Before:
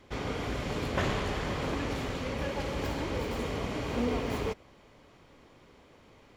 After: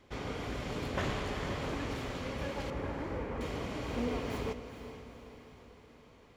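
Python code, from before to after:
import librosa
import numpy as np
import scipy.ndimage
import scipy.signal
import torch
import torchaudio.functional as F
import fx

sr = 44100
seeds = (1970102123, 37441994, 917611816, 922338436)

y = fx.lowpass(x, sr, hz=2100.0, slope=24, at=(2.7, 3.41))
y = fx.echo_diffused(y, sr, ms=451, feedback_pct=53, wet_db=-11.0)
y = F.gain(torch.from_numpy(y), -4.5).numpy()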